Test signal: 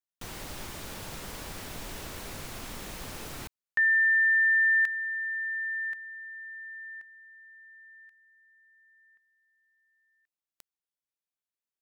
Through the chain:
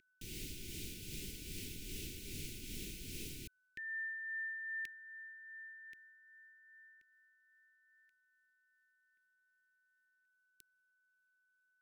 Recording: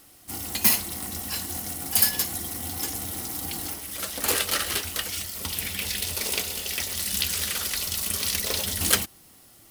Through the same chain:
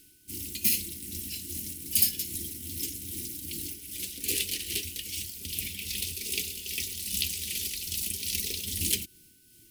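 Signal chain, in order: tremolo 2.5 Hz, depth 41%; whine 1500 Hz -46 dBFS; elliptic band-stop 380–2400 Hz, stop band 70 dB; gain -2.5 dB

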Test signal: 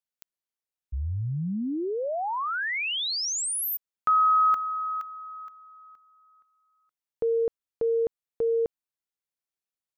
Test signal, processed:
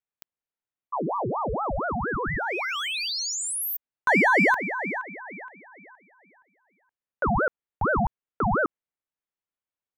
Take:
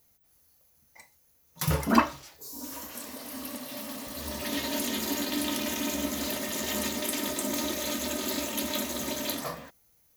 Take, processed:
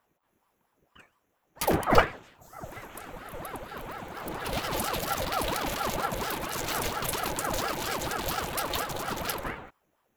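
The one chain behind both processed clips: Wiener smoothing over 9 samples; ring modulator with a swept carrier 660 Hz, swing 65%, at 4.3 Hz; gain +4.5 dB

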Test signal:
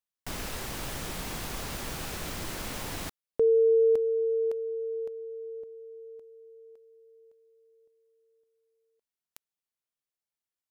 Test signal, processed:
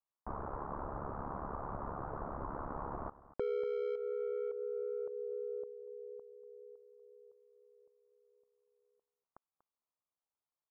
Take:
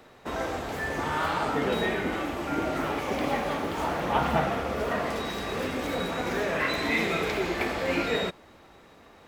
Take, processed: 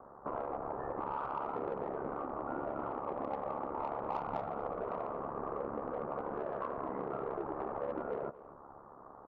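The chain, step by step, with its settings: steep low-pass 1200 Hz 48 dB/oct; dynamic EQ 480 Hz, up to +4 dB, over -42 dBFS, Q 2.1; in parallel at -8 dB: soft clip -24.5 dBFS; on the sum: tilt shelf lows -8.5 dB, about 900 Hz; compressor 4:1, threshold -38 dBFS; on a send: echo 0.24 s -18 dB; on the sum: ring modulator 35 Hz; gain +3.5 dB

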